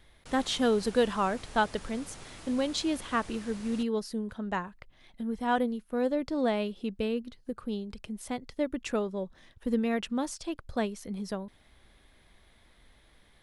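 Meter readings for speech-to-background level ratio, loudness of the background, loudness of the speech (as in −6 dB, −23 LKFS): 15.5 dB, −47.5 LKFS, −32.0 LKFS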